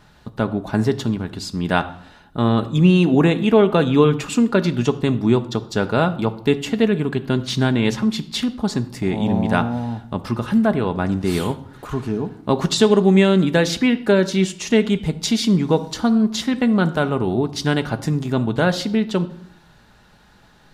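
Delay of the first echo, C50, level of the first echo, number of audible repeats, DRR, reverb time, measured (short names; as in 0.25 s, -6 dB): none, 16.0 dB, none, none, 8.0 dB, 0.70 s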